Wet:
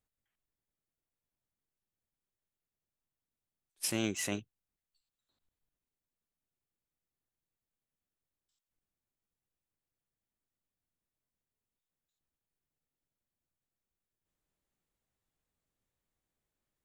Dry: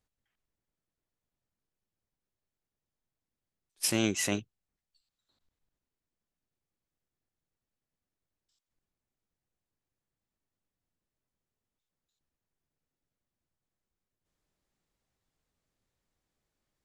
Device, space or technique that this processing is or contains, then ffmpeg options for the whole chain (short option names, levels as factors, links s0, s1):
exciter from parts: -filter_complex "[0:a]asplit=2[s0][s1];[s1]highpass=f=4700:w=0.5412,highpass=f=4700:w=1.3066,asoftclip=type=tanh:threshold=0.0112,volume=0.501[s2];[s0][s2]amix=inputs=2:normalize=0,volume=0.562"